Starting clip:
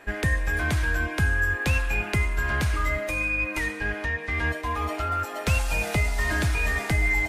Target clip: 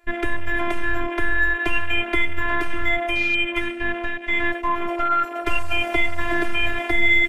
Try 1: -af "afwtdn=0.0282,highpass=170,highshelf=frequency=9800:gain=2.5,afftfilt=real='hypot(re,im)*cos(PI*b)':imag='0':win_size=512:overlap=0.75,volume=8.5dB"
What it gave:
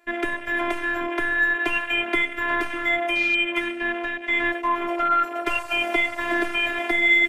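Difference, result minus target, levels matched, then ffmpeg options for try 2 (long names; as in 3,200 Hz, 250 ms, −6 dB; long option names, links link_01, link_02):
125 Hz band −13.5 dB
-af "afwtdn=0.0282,highshelf=frequency=9800:gain=2.5,afftfilt=real='hypot(re,im)*cos(PI*b)':imag='0':win_size=512:overlap=0.75,volume=8.5dB"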